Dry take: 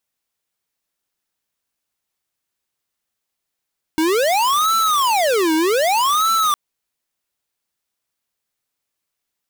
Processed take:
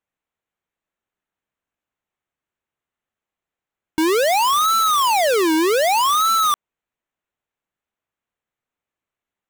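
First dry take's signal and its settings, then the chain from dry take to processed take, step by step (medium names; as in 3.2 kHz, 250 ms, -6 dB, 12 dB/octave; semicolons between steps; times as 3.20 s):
siren wail 314–1330 Hz 0.64 per s square -16.5 dBFS 2.56 s
local Wiener filter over 9 samples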